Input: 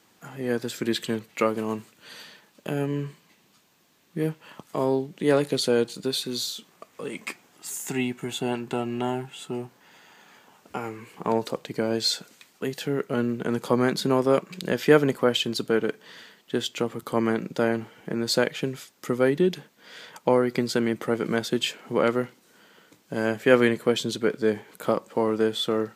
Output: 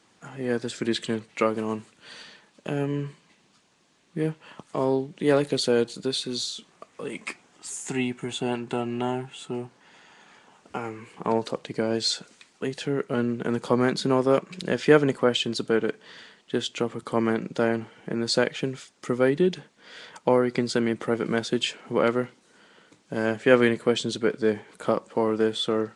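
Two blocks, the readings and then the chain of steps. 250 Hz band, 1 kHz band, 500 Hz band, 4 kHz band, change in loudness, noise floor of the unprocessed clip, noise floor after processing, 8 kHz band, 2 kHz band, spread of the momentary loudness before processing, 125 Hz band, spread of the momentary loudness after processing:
0.0 dB, 0.0 dB, 0.0 dB, −0.5 dB, 0.0 dB, −62 dBFS, −62 dBFS, −1.0 dB, 0.0 dB, 14 LU, 0.0 dB, 14 LU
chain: Nellymoser 44 kbit/s 22,050 Hz

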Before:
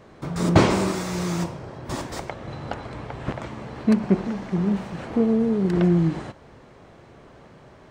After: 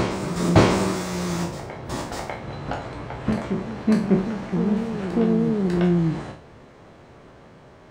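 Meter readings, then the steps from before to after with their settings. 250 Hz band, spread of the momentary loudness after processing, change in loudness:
+0.5 dB, 13 LU, +0.5 dB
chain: peak hold with a decay on every bin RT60 0.44 s
backwards echo 597 ms −7 dB
level −1 dB

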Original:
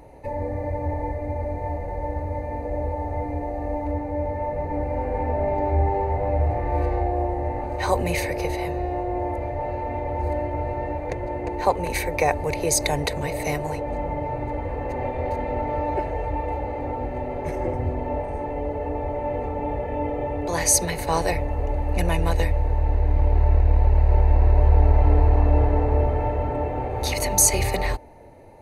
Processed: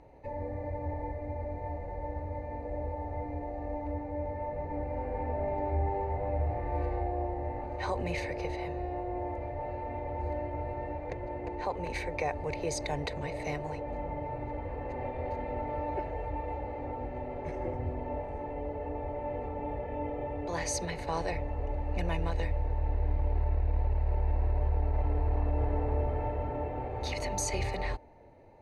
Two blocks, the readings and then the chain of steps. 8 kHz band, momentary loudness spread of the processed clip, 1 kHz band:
−17.0 dB, 7 LU, −9.5 dB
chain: low-pass filter 4,900 Hz 12 dB per octave
brickwall limiter −12 dBFS, peak gain reduction 6 dB
level −9 dB

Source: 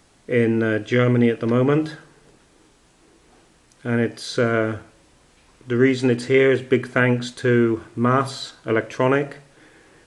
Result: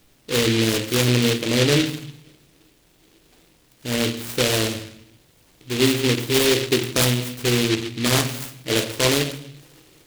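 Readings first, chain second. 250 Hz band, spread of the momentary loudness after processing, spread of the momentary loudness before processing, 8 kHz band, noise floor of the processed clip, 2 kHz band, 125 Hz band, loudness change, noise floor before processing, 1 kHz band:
−2.0 dB, 10 LU, 9 LU, +16.0 dB, −58 dBFS, −1.0 dB, 0.0 dB, 0.0 dB, −57 dBFS, −4.0 dB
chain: rectangular room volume 92 cubic metres, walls mixed, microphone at 0.44 metres
short delay modulated by noise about 2,900 Hz, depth 0.24 ms
level −2.5 dB

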